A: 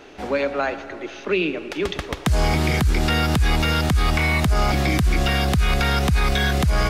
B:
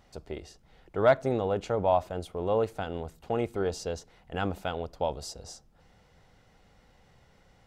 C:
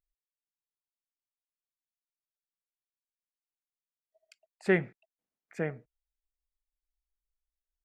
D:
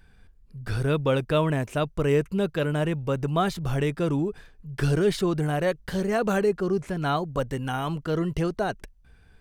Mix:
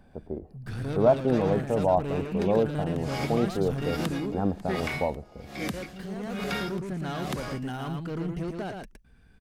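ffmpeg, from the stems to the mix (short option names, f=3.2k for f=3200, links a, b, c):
-filter_complex "[0:a]highpass=f=450:p=1,aeval=exprs='val(0)*pow(10,-28*(0.5-0.5*cos(2*PI*1.2*n/s))/20)':c=same,adelay=700,volume=-8.5dB,asplit=2[a][b];[b]volume=-21.5dB[c];[1:a]lowpass=f=1k:w=0.5412,lowpass=f=1k:w=1.3066,volume=1dB[d];[2:a]volume=-10dB,asplit=2[e][f];[3:a]asoftclip=type=tanh:threshold=-27dB,volume=-5dB,asplit=3[g][h][i];[g]atrim=end=4.87,asetpts=PTS-STARTPTS,afade=t=out:st=4.866:d=0.004:c=hsin[j];[h]atrim=start=4.87:end=5.62,asetpts=PTS-STARTPTS,volume=0[k];[i]atrim=start=5.62,asetpts=PTS-STARTPTS,afade=t=in:d=0.004:c=hsin[l];[j][k][l]concat=n=3:v=0:a=1,asplit=2[m][n];[n]volume=-4.5dB[o];[f]apad=whole_len=414592[p];[m][p]sidechaincompress=threshold=-54dB:ratio=8:attack=35:release=949[q];[c][o]amix=inputs=2:normalize=0,aecho=0:1:114:1[r];[a][d][e][q][r]amix=inputs=5:normalize=0,equalizer=f=220:w=1.6:g=8"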